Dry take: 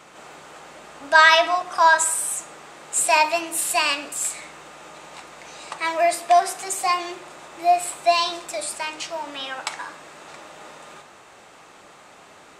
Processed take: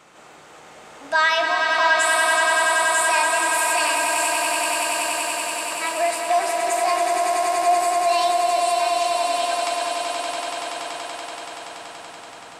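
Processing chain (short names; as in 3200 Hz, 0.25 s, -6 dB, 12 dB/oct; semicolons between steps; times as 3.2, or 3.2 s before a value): swelling echo 95 ms, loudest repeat 8, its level -7 dB; in parallel at -0.5 dB: limiter -9.5 dBFS, peak gain reduction 8.5 dB; on the sum: gain -9 dB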